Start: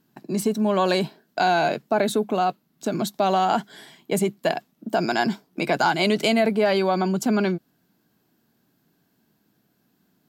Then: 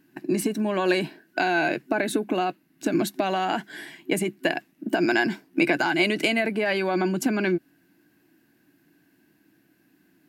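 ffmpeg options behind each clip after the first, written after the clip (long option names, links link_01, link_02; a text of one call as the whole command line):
ffmpeg -i in.wav -af "acompressor=threshold=-23dB:ratio=4,superequalizer=6b=3.16:11b=2.82:12b=2.51:16b=1.58" out.wav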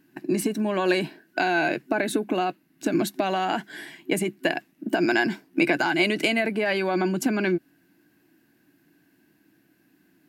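ffmpeg -i in.wav -af anull out.wav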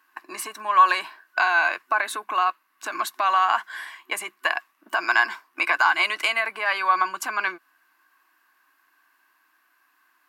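ffmpeg -i in.wav -af "highpass=frequency=1100:width_type=q:width=9.3" out.wav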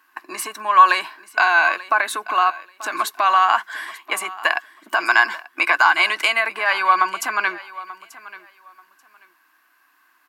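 ffmpeg -i in.wav -af "aecho=1:1:886|1772:0.126|0.0252,volume=4.5dB" out.wav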